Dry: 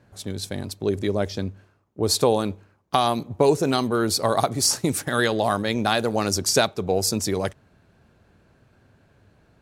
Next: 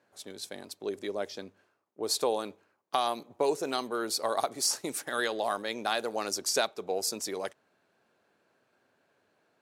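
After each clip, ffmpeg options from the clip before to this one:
-af "highpass=380,volume=0.422"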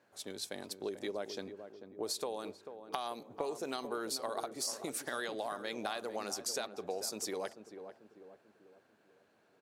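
-filter_complex "[0:a]acompressor=threshold=0.0178:ratio=6,asplit=2[s0][s1];[s1]adelay=442,lowpass=f=950:p=1,volume=0.376,asplit=2[s2][s3];[s3]adelay=442,lowpass=f=950:p=1,volume=0.5,asplit=2[s4][s5];[s5]adelay=442,lowpass=f=950:p=1,volume=0.5,asplit=2[s6][s7];[s7]adelay=442,lowpass=f=950:p=1,volume=0.5,asplit=2[s8][s9];[s9]adelay=442,lowpass=f=950:p=1,volume=0.5,asplit=2[s10][s11];[s11]adelay=442,lowpass=f=950:p=1,volume=0.5[s12];[s0][s2][s4][s6][s8][s10][s12]amix=inputs=7:normalize=0"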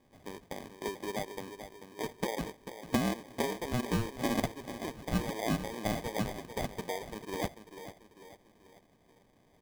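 -af "lowpass=f=1200:t=q:w=6.6,acrusher=samples=32:mix=1:aa=0.000001"

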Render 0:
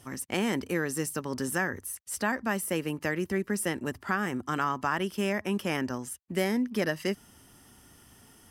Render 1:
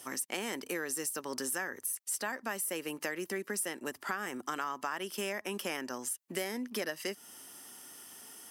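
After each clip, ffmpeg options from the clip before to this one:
-af "highpass=330,highshelf=f=4300:g=8,acompressor=threshold=0.0141:ratio=3,volume=1.26"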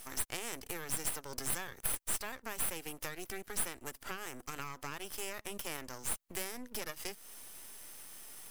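-af "highshelf=f=5400:g=10.5,aeval=exprs='max(val(0),0)':c=same,volume=0.668"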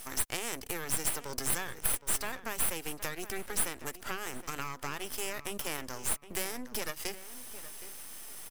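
-filter_complex "[0:a]asplit=2[s0][s1];[s1]adelay=768,lowpass=f=3200:p=1,volume=0.211,asplit=2[s2][s3];[s3]adelay=768,lowpass=f=3200:p=1,volume=0.2[s4];[s0][s2][s4]amix=inputs=3:normalize=0,volume=1.68"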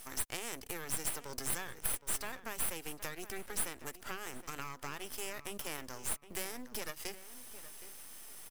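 -af "acrusher=bits=6:mode=log:mix=0:aa=0.000001,volume=0.562"

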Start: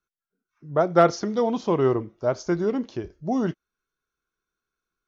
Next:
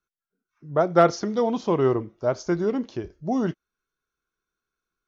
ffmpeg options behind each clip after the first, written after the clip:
-af anull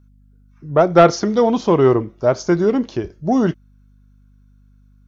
-af "acontrast=73,aeval=exprs='val(0)+0.00282*(sin(2*PI*50*n/s)+sin(2*PI*2*50*n/s)/2+sin(2*PI*3*50*n/s)/3+sin(2*PI*4*50*n/s)/4+sin(2*PI*5*50*n/s)/5)':c=same,volume=1.19"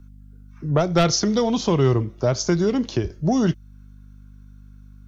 -filter_complex "[0:a]acrossover=split=140|3000[s0][s1][s2];[s1]acompressor=threshold=0.0316:ratio=3[s3];[s0][s3][s2]amix=inputs=3:normalize=0,volume=2.11"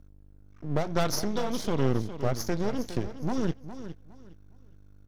-af "aeval=exprs='max(val(0),0)':c=same,aecho=1:1:411|822|1233:0.251|0.0603|0.0145,volume=0.562"

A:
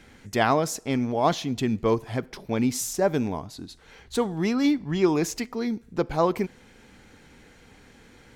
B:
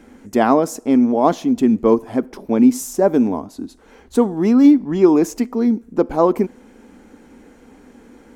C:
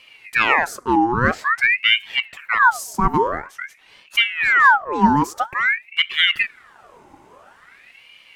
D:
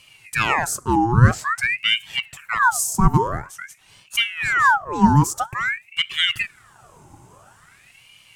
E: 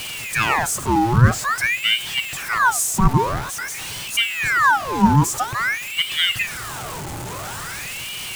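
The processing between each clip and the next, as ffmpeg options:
-af "equalizer=f=125:t=o:w=1:g=-12,equalizer=f=250:t=o:w=1:g=12,equalizer=f=500:t=o:w=1:g=3,equalizer=f=1000:t=o:w=1:g=3,equalizer=f=2000:t=o:w=1:g=-4,equalizer=f=4000:t=o:w=1:g=-8,volume=1.41"
-af "aeval=exprs='val(0)*sin(2*PI*1600*n/s+1600*0.65/0.49*sin(2*PI*0.49*n/s))':c=same"
-af "equalizer=f=125:t=o:w=1:g=10,equalizer=f=250:t=o:w=1:g=-7,equalizer=f=500:t=o:w=1:g=-9,equalizer=f=1000:t=o:w=1:g=-4,equalizer=f=2000:t=o:w=1:g=-10,equalizer=f=4000:t=o:w=1:g=-6,equalizer=f=8000:t=o:w=1:g=7,volume=1.88"
-af "aeval=exprs='val(0)+0.5*0.0631*sgn(val(0))':c=same,volume=0.891"

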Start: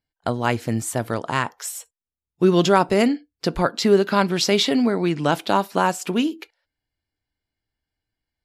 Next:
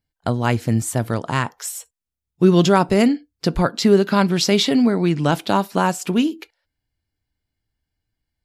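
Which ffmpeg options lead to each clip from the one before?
-af "bass=f=250:g=7,treble=f=4000:g=2"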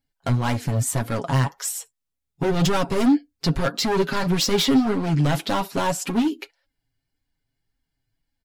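-af "volume=8.91,asoftclip=hard,volume=0.112,flanger=delay=3.6:depth=4.3:regen=30:speed=1.8:shape=sinusoidal,aecho=1:1:7.3:0.46,volume=1.58"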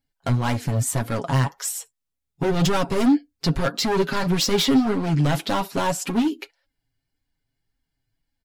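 -af anull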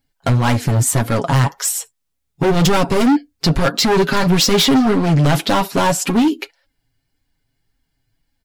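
-af "asoftclip=type=hard:threshold=0.119,volume=2.66"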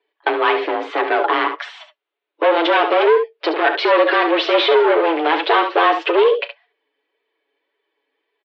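-af "aecho=1:1:36|70:0.141|0.299,apsyclip=4.73,highpass=f=210:t=q:w=0.5412,highpass=f=210:t=q:w=1.307,lowpass=f=3300:t=q:w=0.5176,lowpass=f=3300:t=q:w=0.7071,lowpass=f=3300:t=q:w=1.932,afreqshift=160,volume=0.355"

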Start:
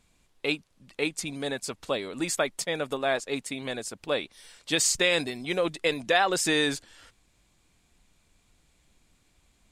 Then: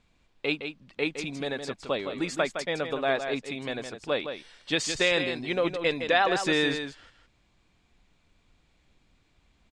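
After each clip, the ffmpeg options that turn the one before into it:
-af "lowpass=4300,aecho=1:1:163:0.398"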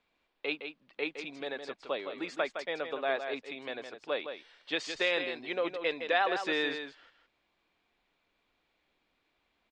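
-filter_complex "[0:a]acrossover=split=290 4900:gain=0.126 1 0.126[s0][s1][s2];[s0][s1][s2]amix=inputs=3:normalize=0,volume=0.596"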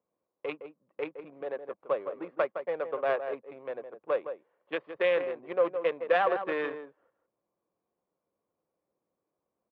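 -af "adynamicsmooth=sensitivity=2.5:basefreq=540,highpass=140,equalizer=f=260:t=q:w=4:g=-7,equalizer=f=530:t=q:w=4:g=8,equalizer=f=1100:t=q:w=4:g=8,lowpass=f=3100:w=0.5412,lowpass=f=3100:w=1.3066"

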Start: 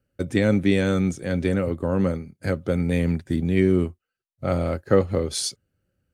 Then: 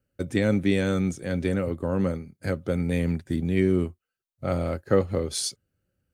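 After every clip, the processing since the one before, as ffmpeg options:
-af "highshelf=f=9500:g=4,volume=0.708"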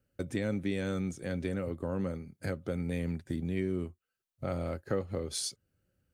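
-af "acompressor=threshold=0.0141:ratio=2"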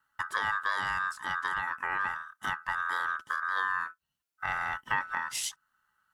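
-af "aeval=exprs='val(0)*sin(2*PI*1400*n/s)':c=same,volume=1.68"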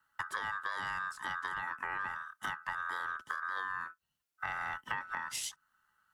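-filter_complex "[0:a]acrossover=split=120|560[s0][s1][s2];[s0]acompressor=threshold=0.00112:ratio=4[s3];[s1]acompressor=threshold=0.00251:ratio=4[s4];[s2]acompressor=threshold=0.0178:ratio=4[s5];[s3][s4][s5]amix=inputs=3:normalize=0"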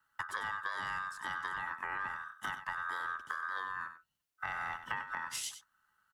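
-af "aecho=1:1:96:0.282,volume=0.891"

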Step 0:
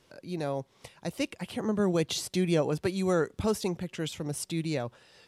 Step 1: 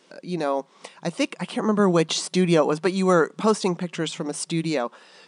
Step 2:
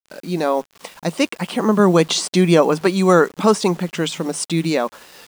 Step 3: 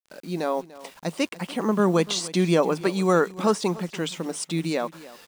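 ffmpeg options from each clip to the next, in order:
-af "afftfilt=real='re*between(b*sr/4096,160,10000)':imag='im*between(b*sr/4096,160,10000)':win_size=4096:overlap=0.75,adynamicequalizer=threshold=0.00355:dfrequency=1100:dqfactor=1.9:tfrequency=1100:tqfactor=1.9:attack=5:release=100:ratio=0.375:range=4:mode=boostabove:tftype=bell,volume=2.24"
-af "acrusher=bits=7:mix=0:aa=0.000001,volume=1.88"
-af "aecho=1:1:293:0.119,volume=0.447"

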